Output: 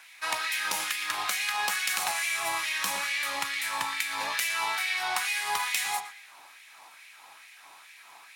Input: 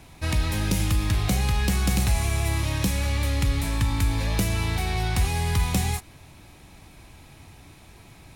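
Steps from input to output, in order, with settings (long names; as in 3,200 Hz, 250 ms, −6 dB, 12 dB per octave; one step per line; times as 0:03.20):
0:02.26–0:04.36: parametric band 180 Hz +6.5 dB 1.4 octaves
tape delay 117 ms, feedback 45%, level −8.5 dB, low-pass 3,200 Hz
auto-filter high-pass sine 2.3 Hz 890–2,100 Hz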